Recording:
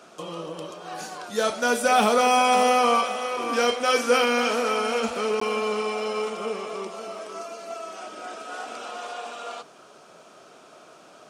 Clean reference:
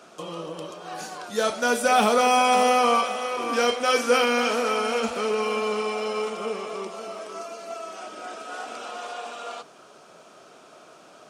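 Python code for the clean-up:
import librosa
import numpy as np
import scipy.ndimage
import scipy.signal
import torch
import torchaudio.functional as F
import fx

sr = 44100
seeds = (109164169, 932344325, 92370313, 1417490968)

y = fx.fix_interpolate(x, sr, at_s=(5.4,), length_ms=14.0)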